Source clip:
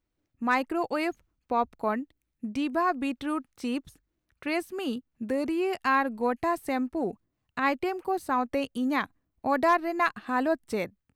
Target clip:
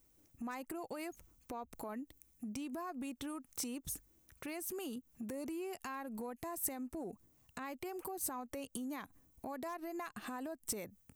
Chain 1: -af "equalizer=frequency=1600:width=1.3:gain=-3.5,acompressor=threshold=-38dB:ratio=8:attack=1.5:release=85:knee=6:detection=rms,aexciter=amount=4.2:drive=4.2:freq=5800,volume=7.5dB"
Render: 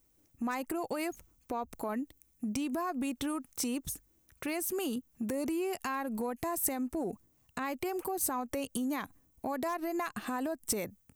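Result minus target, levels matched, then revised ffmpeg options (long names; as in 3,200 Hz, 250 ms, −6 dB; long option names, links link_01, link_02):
downward compressor: peak gain reduction −9 dB
-af "equalizer=frequency=1600:width=1.3:gain=-3.5,acompressor=threshold=-48dB:ratio=8:attack=1.5:release=85:knee=6:detection=rms,aexciter=amount=4.2:drive=4.2:freq=5800,volume=7.5dB"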